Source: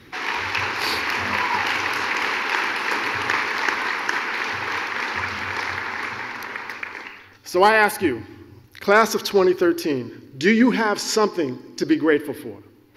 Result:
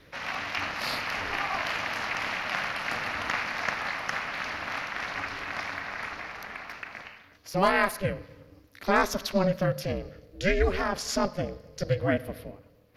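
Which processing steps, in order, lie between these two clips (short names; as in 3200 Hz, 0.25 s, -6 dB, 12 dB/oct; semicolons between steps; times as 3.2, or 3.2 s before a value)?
ring modulator 190 Hz; gain -5 dB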